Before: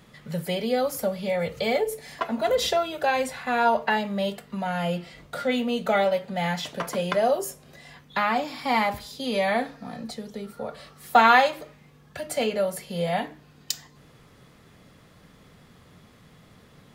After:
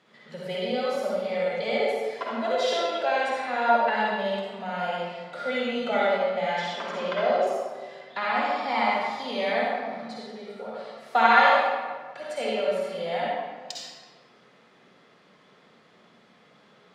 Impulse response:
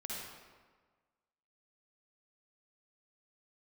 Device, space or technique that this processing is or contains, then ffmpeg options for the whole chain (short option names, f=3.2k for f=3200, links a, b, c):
supermarket ceiling speaker: -filter_complex "[0:a]asettb=1/sr,asplit=3[a][b][c];[a]atrim=end=6.754[d];[b]atrim=start=6.75:end=7.47,asetpts=PTS-STARTPTS,afade=t=in:d=0.004:c=qsin,afade=t=out:st=0.716:d=0.004:c=qsin,lowpass=5.7k[e];[c]atrim=start=7.466[f];[d][e]acrossfade=d=0.004:c1=hsin:c2=qsin[g];[g][f]acrossfade=d=0.004:c1=qsin:c2=hsin,highpass=320,lowpass=5.1k[h];[1:a]atrim=start_sample=2205[i];[h][i]afir=irnorm=-1:irlink=0"